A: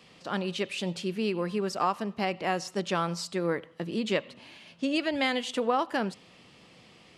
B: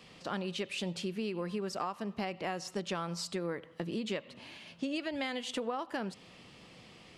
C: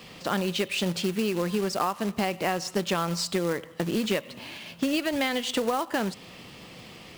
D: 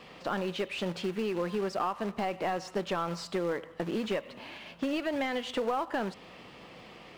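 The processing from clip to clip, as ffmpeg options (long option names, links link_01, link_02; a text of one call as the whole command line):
ffmpeg -i in.wav -af "acompressor=threshold=-34dB:ratio=4,lowshelf=frequency=72:gain=6" out.wav
ffmpeg -i in.wav -af "acrusher=bits=3:mode=log:mix=0:aa=0.000001,volume=9dB" out.wav
ffmpeg -i in.wav -filter_complex "[0:a]aeval=exprs='val(0)+0.00126*(sin(2*PI*50*n/s)+sin(2*PI*2*50*n/s)/2+sin(2*PI*3*50*n/s)/3+sin(2*PI*4*50*n/s)/4+sin(2*PI*5*50*n/s)/5)':channel_layout=same,asplit=2[link_01][link_02];[link_02]highpass=frequency=720:poles=1,volume=15dB,asoftclip=type=tanh:threshold=-11.5dB[link_03];[link_01][link_03]amix=inputs=2:normalize=0,lowpass=frequency=1000:poles=1,volume=-6dB,volume=-6dB" out.wav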